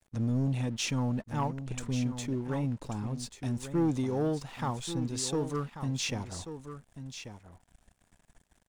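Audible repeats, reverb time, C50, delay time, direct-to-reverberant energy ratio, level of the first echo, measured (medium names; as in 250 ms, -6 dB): 1, no reverb, no reverb, 1138 ms, no reverb, -10.5 dB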